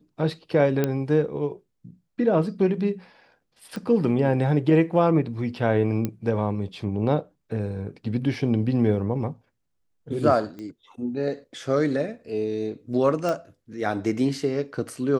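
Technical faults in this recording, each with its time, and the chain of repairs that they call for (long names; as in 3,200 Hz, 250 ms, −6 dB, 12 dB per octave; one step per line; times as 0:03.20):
0:00.84: click −10 dBFS
0:03.76: click −20 dBFS
0:06.05: click −13 dBFS
0:10.59: click −26 dBFS
0:13.29: click −15 dBFS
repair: click removal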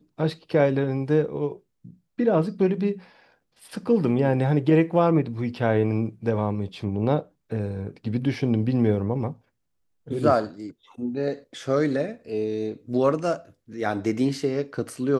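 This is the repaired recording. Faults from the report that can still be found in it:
none of them is left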